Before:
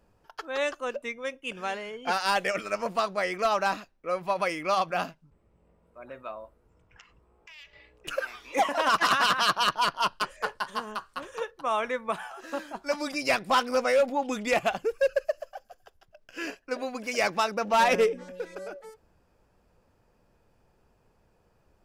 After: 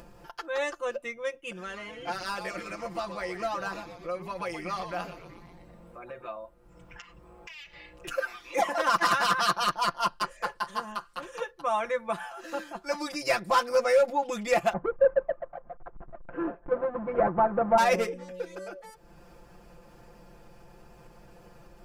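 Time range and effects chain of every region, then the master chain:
1.54–6.28 compressor 1.5:1, threshold -40 dBFS + frequency-shifting echo 0.122 s, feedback 52%, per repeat -140 Hz, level -10 dB
14.73–17.78 half-waves squared off + LPF 1300 Hz 24 dB/oct + upward compressor, threshold -34 dBFS
whole clip: comb 5.8 ms, depth 92%; dynamic EQ 3000 Hz, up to -6 dB, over -41 dBFS, Q 2.1; upward compressor, threshold -35 dBFS; gain -3 dB

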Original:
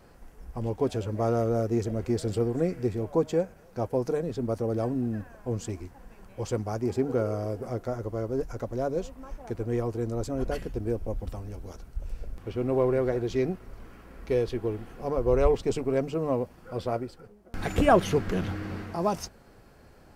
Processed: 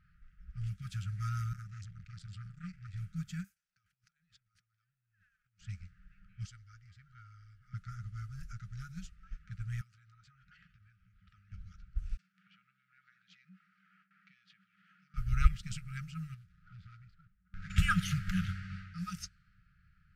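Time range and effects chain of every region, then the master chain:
1.53–2.94 bell 490 Hz -5.5 dB 2.8 oct + core saturation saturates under 680 Hz
3.44–5.61 expander -44 dBFS + negative-ratio compressor -38 dBFS + pre-emphasis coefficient 0.97
6.46–7.74 passive tone stack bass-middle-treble 10-0-10 + notch 2500 Hz, Q 8.7
9.81–11.52 HPF 670 Hz 6 dB/oct + high shelf 6200 Hz -7 dB + compressor 5:1, threshold -39 dBFS
12.17–15.14 gate with hold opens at -39 dBFS, closes at -45 dBFS + compressor 10:1, threshold -35 dBFS + steep high-pass 190 Hz 48 dB/oct
16.34–17.7 median filter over 15 samples + compressor 2.5:1, threshold -34 dBFS
whole clip: low-pass opened by the level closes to 2200 Hz, open at -24.5 dBFS; FFT band-reject 200–1200 Hz; upward expander 1.5:1, over -44 dBFS; gain +3 dB

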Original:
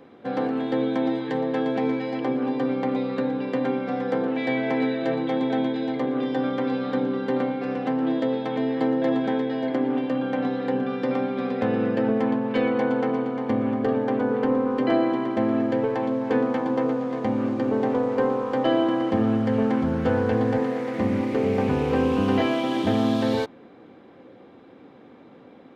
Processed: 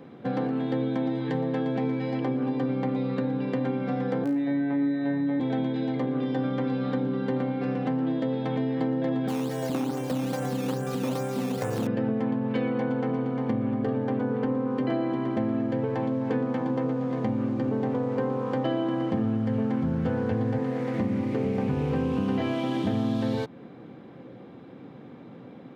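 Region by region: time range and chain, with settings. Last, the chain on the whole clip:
4.24–5.4 LPF 2000 Hz + robotiser 141 Hz + flutter echo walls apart 3 m, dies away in 0.46 s
9.28–11.87 LFO notch square 2.4 Hz 230–2400 Hz + decimation with a swept rate 10× 2.4 Hz + core saturation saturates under 640 Hz
whole clip: bell 140 Hz +13 dB 1.1 oct; notches 50/100/150 Hz; compressor 3:1, threshold -26 dBFS

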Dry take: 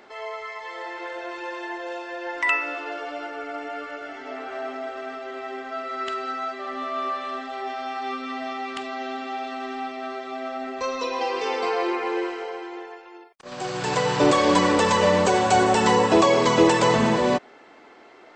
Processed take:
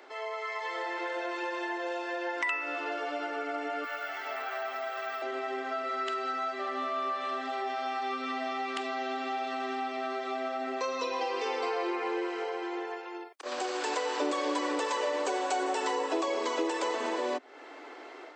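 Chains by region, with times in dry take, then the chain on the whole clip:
3.84–5.22 HPF 790 Hz + careless resampling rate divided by 2×, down filtered, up hold
whole clip: AGC gain up to 6 dB; steep high-pass 260 Hz 96 dB/oct; compressor 3:1, threshold -30 dBFS; gain -2.5 dB

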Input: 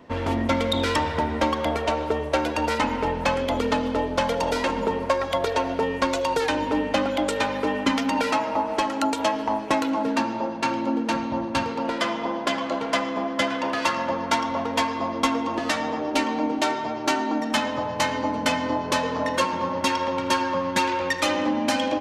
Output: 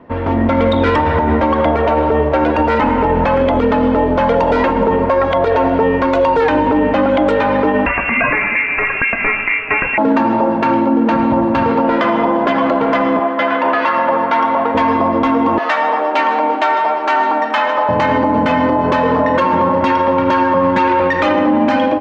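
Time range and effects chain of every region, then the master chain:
7.86–9.98 HPF 430 Hz 6 dB/oct + bell 840 Hz -4.5 dB 0.28 oct + inverted band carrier 3000 Hz
13.19–14.75 HPF 670 Hz 6 dB/oct + air absorption 100 m
15.58–17.89 HPF 730 Hz + echo 0.614 s -19.5 dB
whole clip: LPF 1800 Hz 12 dB/oct; AGC; limiter -12.5 dBFS; gain +7 dB

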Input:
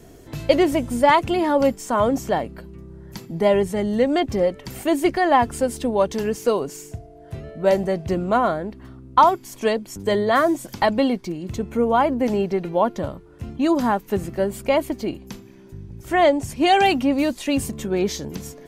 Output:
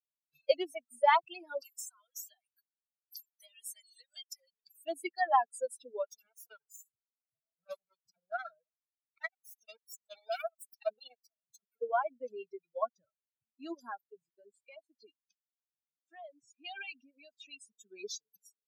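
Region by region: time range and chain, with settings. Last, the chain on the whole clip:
1.61–4.52 HPF 620 Hz 24 dB/oct + tilt +4 dB/oct + compressor 10:1, threshold -27 dBFS
6.05–11.82 minimum comb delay 1.4 ms + high shelf 7600 Hz +6.5 dB + core saturation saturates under 390 Hz
14.02–17.75 LPF 6700 Hz + compressor 20:1, threshold -20 dBFS
whole clip: per-bin expansion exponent 3; HPF 500 Hz 24 dB/oct; reverb removal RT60 0.8 s; gain -5.5 dB

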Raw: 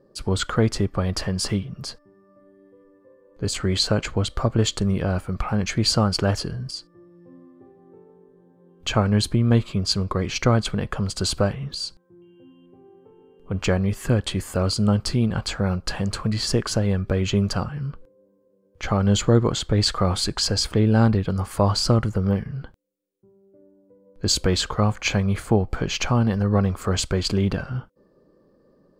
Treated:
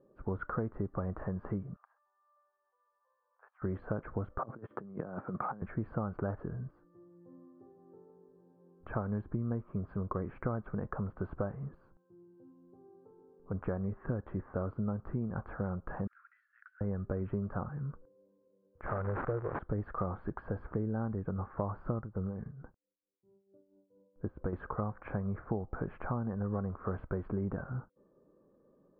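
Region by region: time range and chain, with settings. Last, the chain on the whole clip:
1.76–3.62 steep high-pass 800 Hz + compressor, threshold -42 dBFS
4.38–5.62 HPF 140 Hz 24 dB/oct + negative-ratio compressor -30 dBFS, ratio -0.5
16.07–16.81 Chebyshev high-pass 1400 Hz, order 6 + compressor 16:1, threshold -37 dBFS
18.86–19.59 switching spikes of -10.5 dBFS + fixed phaser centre 890 Hz, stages 6 + decimation joined by straight lines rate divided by 4×
22–24.53 air absorption 300 m + tremolo 4.5 Hz, depth 73%
whole clip: steep low-pass 1500 Hz 36 dB/oct; low shelf 100 Hz -5.5 dB; compressor 6:1, threshold -23 dBFS; gain -7.5 dB

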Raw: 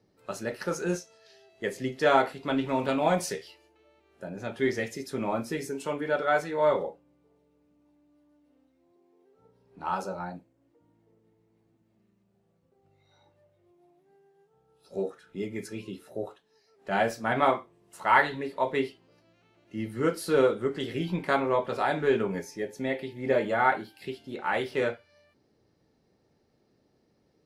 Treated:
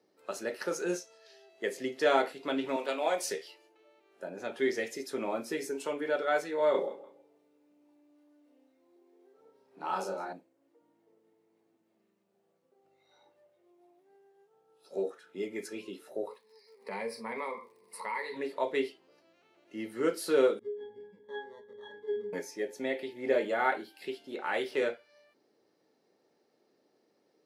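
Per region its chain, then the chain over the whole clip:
2.76–3.25 HPF 430 Hz + mismatched tape noise reduction decoder only
6.71–10.33 doubler 31 ms -2 dB + feedback echo 0.162 s, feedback 25%, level -17.5 dB
16.26–18.35 ripple EQ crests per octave 0.91, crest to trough 18 dB + compressor 2:1, threshold -39 dBFS + crackle 79/s -56 dBFS
20.59–22.33 sample-rate reducer 2500 Hz + notch 810 Hz, Q 7.6 + octave resonator G#, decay 0.39 s
whole clip: Chebyshev high-pass 370 Hz, order 2; dynamic EQ 1000 Hz, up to -6 dB, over -38 dBFS, Q 0.91

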